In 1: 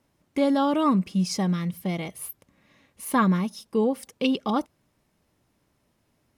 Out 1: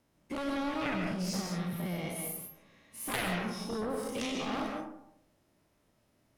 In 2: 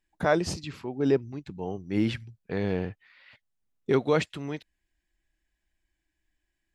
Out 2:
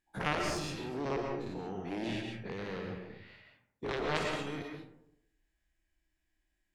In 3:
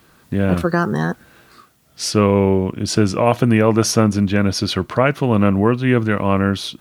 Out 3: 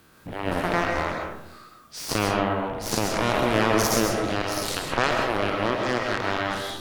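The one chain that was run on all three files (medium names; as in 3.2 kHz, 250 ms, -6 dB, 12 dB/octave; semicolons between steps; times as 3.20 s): every event in the spectrogram widened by 120 ms; in parallel at +3 dB: compression, threshold -26 dBFS; on the sum: saturation -1.5 dBFS; Chebyshev shaper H 3 -7 dB, 4 -24 dB, 6 -36 dB, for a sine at -1.5 dBFS; algorithmic reverb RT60 0.77 s, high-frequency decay 0.4×, pre-delay 90 ms, DRR 2 dB; trim -6.5 dB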